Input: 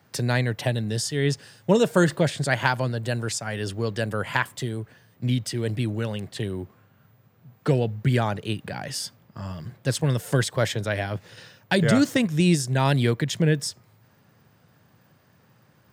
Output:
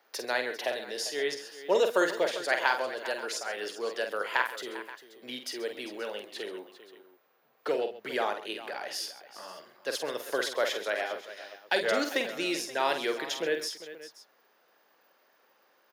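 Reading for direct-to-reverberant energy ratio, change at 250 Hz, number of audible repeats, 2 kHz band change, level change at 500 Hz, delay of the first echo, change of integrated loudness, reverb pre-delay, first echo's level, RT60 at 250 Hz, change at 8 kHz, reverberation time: no reverb audible, −15.0 dB, 4, −2.5 dB, −3.5 dB, 48 ms, −6.5 dB, no reverb audible, −7.0 dB, no reverb audible, −7.0 dB, no reverb audible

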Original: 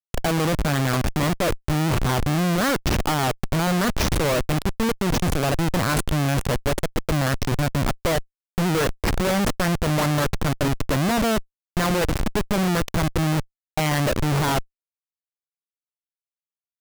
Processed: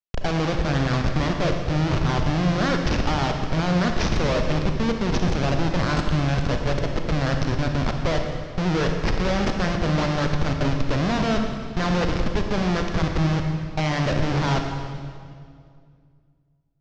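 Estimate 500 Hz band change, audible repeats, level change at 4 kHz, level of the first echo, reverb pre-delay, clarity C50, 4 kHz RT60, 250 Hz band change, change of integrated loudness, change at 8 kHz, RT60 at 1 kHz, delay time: −1.0 dB, no echo audible, −1.5 dB, no echo audible, 34 ms, 4.0 dB, 1.8 s, 0.0 dB, −1.0 dB, −9.0 dB, 2.0 s, no echo audible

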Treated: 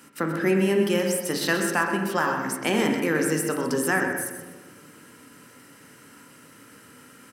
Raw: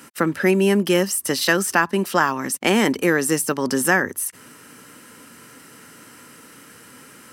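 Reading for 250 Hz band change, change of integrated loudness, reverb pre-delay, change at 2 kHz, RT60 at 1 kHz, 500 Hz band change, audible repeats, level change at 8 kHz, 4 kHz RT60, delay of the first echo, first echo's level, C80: −4.0 dB, −4.5 dB, 24 ms, −5.0 dB, 1.2 s, −3.5 dB, 2, −6.5 dB, 0.75 s, 127 ms, −9.0 dB, 5.0 dB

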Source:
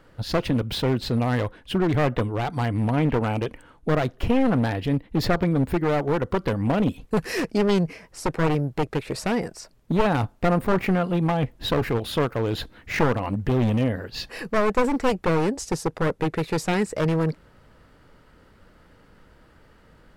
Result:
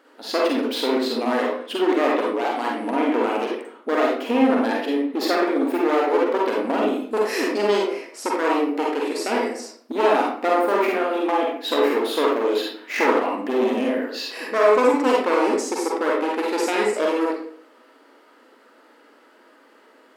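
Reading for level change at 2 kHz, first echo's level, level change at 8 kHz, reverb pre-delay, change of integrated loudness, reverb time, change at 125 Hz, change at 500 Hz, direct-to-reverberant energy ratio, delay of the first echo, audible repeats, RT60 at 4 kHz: +4.0 dB, no echo audible, +3.0 dB, 39 ms, +2.5 dB, 0.55 s, below −25 dB, +5.0 dB, −3.0 dB, no echo audible, no echo audible, 0.40 s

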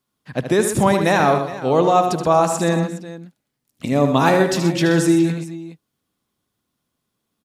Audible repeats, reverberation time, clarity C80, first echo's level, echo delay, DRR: 4, no reverb audible, no reverb audible, −8.5 dB, 76 ms, no reverb audible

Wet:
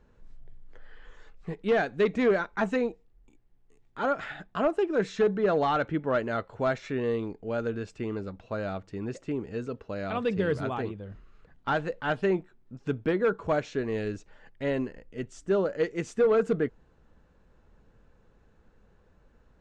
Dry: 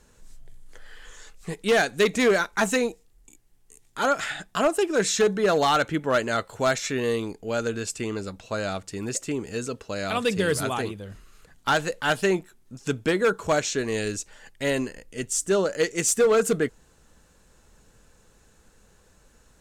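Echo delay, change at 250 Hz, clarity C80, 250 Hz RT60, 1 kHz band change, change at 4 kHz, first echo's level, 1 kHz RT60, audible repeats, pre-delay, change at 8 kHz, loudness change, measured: no echo audible, −2.5 dB, no reverb audible, no reverb audible, −5.0 dB, −13.5 dB, no echo audible, no reverb audible, no echo audible, no reverb audible, below −20 dB, −4.5 dB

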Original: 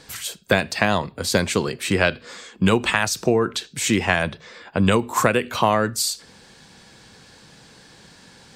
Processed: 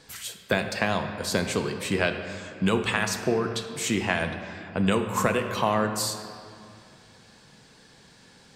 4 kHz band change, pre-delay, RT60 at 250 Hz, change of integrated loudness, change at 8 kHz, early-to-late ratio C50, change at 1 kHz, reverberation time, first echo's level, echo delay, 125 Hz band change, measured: −6.0 dB, 4 ms, 3.1 s, −5.5 dB, −6.0 dB, 7.5 dB, −5.5 dB, 2.5 s, no echo audible, no echo audible, −5.5 dB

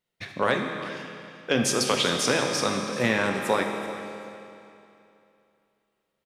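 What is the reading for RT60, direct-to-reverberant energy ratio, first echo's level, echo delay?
2.8 s, 2.0 dB, −16.5 dB, 384 ms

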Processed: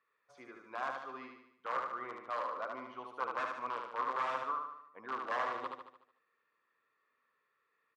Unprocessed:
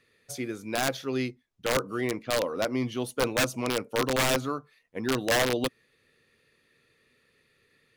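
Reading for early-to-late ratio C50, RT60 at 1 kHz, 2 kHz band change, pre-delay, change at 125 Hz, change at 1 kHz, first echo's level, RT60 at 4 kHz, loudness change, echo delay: no reverb audible, no reverb audible, −11.5 dB, no reverb audible, below −25 dB, −2.0 dB, −4.0 dB, no reverb audible, −10.5 dB, 74 ms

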